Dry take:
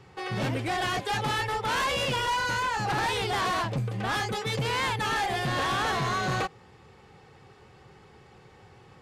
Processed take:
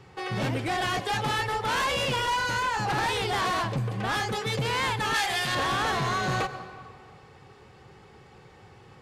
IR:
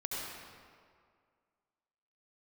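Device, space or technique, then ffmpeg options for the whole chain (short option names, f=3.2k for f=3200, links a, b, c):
ducked reverb: -filter_complex "[0:a]asettb=1/sr,asplit=3[a][b][c];[a]atrim=end=5.144[d];[b]atrim=start=5.14:end=5.55,asetpts=PTS-STARTPTS,afade=t=in:d=0.004:c=qsin,afade=t=out:st=0.406:d=0.004:c=qsin,tiltshelf=f=1.1k:g=-7.5[e];[c]atrim=start=5.546[f];[d][e]acrossfade=d=0.004:c1=hsin:c2=qsin[g];[g][f]acrossfade=d=0.004:c1=qsin:c2=hsin,asplit=3[h][i][j];[1:a]atrim=start_sample=2205[k];[i][k]afir=irnorm=-1:irlink=0[l];[j]apad=whole_len=397687[m];[l][m]sidechaincompress=threshold=-32dB:ratio=8:attack=16:release=139,volume=-12.5dB[n];[h][n]amix=inputs=2:normalize=0"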